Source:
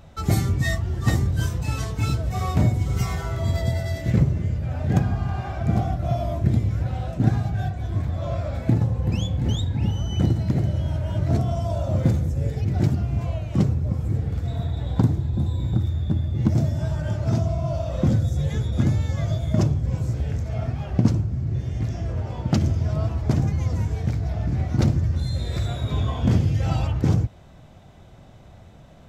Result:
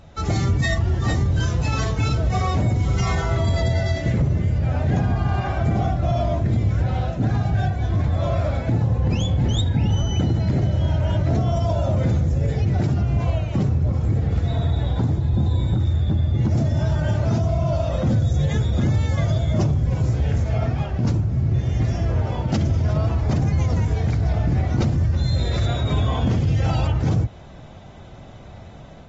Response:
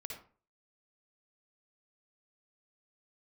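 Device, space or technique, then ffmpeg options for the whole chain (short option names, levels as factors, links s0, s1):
low-bitrate web radio: -af "dynaudnorm=f=130:g=3:m=1.78,alimiter=limit=0.211:level=0:latency=1:release=33,volume=1.12" -ar 48000 -c:a aac -b:a 24k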